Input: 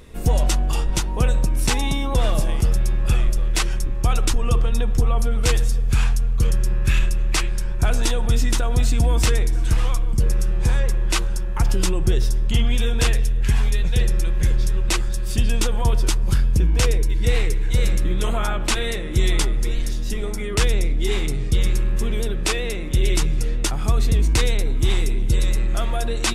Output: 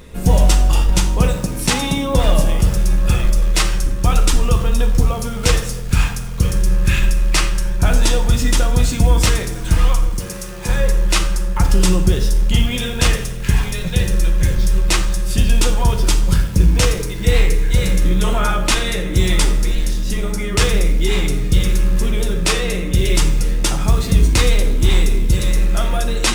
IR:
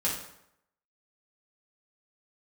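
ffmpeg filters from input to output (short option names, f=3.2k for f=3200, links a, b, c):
-filter_complex "[0:a]acrusher=bits=8:mode=log:mix=0:aa=0.000001,asettb=1/sr,asplit=3[a][b][c];[a]atrim=end=10.094[d];[b]atrim=start=10.09:end=10.69,asetpts=PTS-STARTPTS,afade=t=in:d=0.004:c=qsin,afade=t=out:st=0.596:d=0.004:c=qsin,highpass=f=410:p=1[e];[c]atrim=start=10.686[f];[d][e]acrossfade=d=0.004:c1=hsin:c2=qsin[g];[g][f]acrossfade=d=0.004:c1=qsin:c2=hsin,asplit=2[h][i];[1:a]atrim=start_sample=2205[j];[i][j]afir=irnorm=-1:irlink=0,volume=-8dB[k];[h][k]amix=inputs=2:normalize=0,volume=1.5dB"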